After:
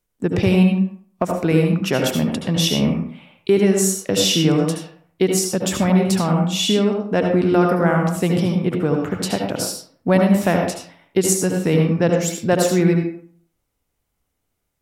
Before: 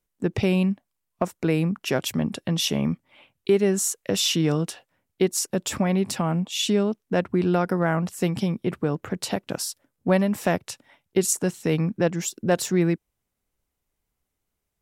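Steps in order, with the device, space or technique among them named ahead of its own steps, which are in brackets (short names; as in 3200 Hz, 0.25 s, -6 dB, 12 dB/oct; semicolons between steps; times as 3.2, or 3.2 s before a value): bathroom (reverb RT60 0.55 s, pre-delay 69 ms, DRR 2 dB); gain +3.5 dB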